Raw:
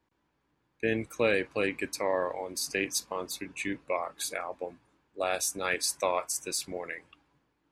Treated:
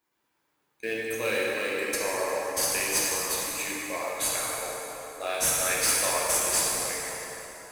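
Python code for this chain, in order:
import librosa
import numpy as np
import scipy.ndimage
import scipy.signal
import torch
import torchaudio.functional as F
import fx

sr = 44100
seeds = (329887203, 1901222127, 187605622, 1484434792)

p1 = fx.riaa(x, sr, side='recording')
p2 = 10.0 ** (-12.0 / 20.0) * np.tanh(p1 / 10.0 ** (-12.0 / 20.0))
p3 = fx.sample_hold(p2, sr, seeds[0], rate_hz=6500.0, jitter_pct=20)
p4 = p2 + (p3 * 10.0 ** (-10.5 / 20.0))
p5 = fx.rev_plate(p4, sr, seeds[1], rt60_s=4.0, hf_ratio=0.65, predelay_ms=0, drr_db=-6.0)
y = p5 * 10.0 ** (-6.5 / 20.0)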